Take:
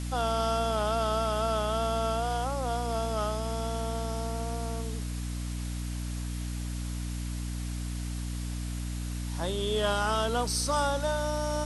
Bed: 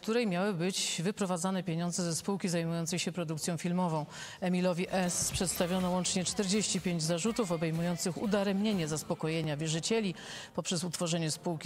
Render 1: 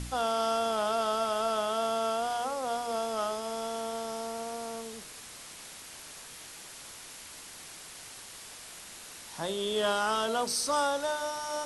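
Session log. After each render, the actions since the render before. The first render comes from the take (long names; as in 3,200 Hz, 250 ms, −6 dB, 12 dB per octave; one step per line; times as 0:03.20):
hum removal 60 Hz, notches 11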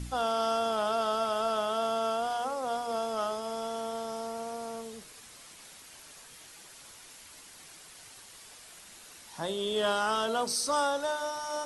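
broadband denoise 6 dB, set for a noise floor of −47 dBFS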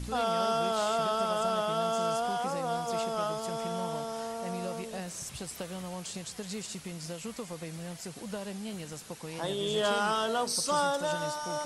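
mix in bed −8.5 dB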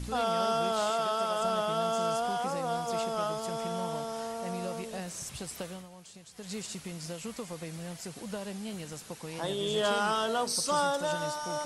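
0:00.90–0:01.42: high-pass filter 300 Hz 6 dB per octave
0:05.66–0:06.54: duck −11.5 dB, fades 0.22 s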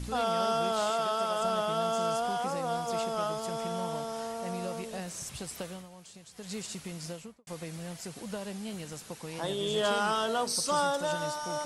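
0:07.06–0:07.47: fade out and dull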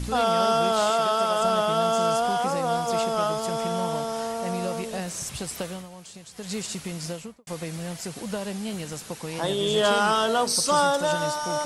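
level +7 dB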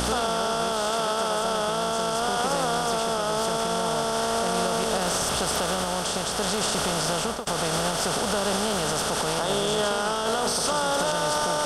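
compressor on every frequency bin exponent 0.4
brickwall limiter −15.5 dBFS, peak gain reduction 11.5 dB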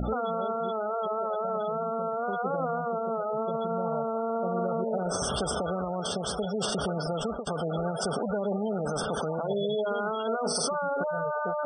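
gate on every frequency bin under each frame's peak −10 dB strong
parametric band 890 Hz −5.5 dB 0.84 octaves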